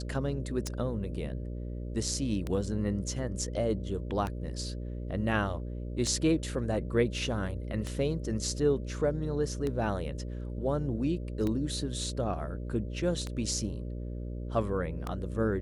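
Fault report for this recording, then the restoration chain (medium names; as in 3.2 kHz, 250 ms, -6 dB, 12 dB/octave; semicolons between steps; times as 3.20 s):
buzz 60 Hz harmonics 10 -37 dBFS
tick 33 1/3 rpm -20 dBFS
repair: de-click; de-hum 60 Hz, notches 10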